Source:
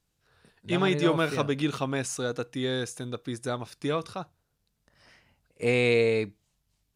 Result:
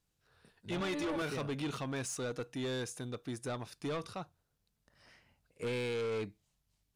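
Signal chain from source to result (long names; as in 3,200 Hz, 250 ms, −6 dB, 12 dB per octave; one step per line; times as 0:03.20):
0:00.80–0:01.22: comb filter 3.5 ms, depth 96%
brickwall limiter −16.5 dBFS, peak gain reduction 8 dB
soft clipping −27.5 dBFS, distortion −10 dB
level −4.5 dB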